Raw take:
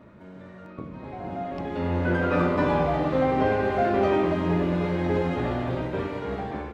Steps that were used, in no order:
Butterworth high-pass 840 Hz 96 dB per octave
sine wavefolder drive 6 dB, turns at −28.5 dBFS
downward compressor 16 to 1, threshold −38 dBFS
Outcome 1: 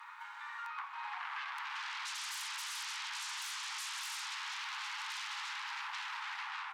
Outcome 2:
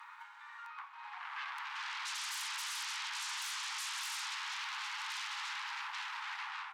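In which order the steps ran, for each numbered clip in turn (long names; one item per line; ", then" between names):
sine wavefolder, then Butterworth high-pass, then downward compressor
sine wavefolder, then downward compressor, then Butterworth high-pass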